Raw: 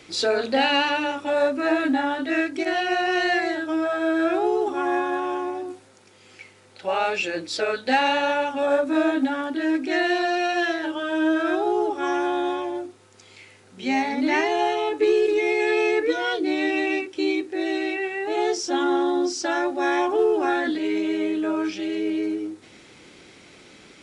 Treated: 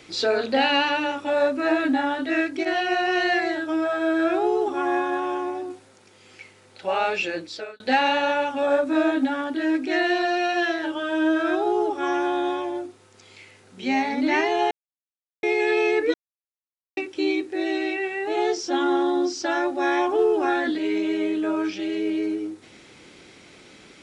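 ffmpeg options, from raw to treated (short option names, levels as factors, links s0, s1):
-filter_complex "[0:a]asplit=6[s0][s1][s2][s3][s4][s5];[s0]atrim=end=7.8,asetpts=PTS-STARTPTS,afade=t=out:st=7.29:d=0.51[s6];[s1]atrim=start=7.8:end=14.71,asetpts=PTS-STARTPTS,afade=t=in:d=0.004:c=hsin,afade=t=out:st=6.906:d=0.004:c=hsin[s7];[s2]atrim=start=14.71:end=15.43,asetpts=PTS-STARTPTS,volume=0[s8];[s3]atrim=start=15.43:end=16.14,asetpts=PTS-STARTPTS,afade=t=in:d=0.004:c=hsin,afade=t=out:st=0.706:d=0.004:c=hsin[s9];[s4]atrim=start=16.14:end=16.97,asetpts=PTS-STARTPTS,volume=0[s10];[s5]atrim=start=16.97,asetpts=PTS-STARTPTS,afade=t=in:d=0.004:c=hsin[s11];[s6][s7][s8][s9][s10][s11]concat=n=6:v=0:a=1,acrossover=split=6700[s12][s13];[s13]acompressor=threshold=0.00112:ratio=4:attack=1:release=60[s14];[s12][s14]amix=inputs=2:normalize=0"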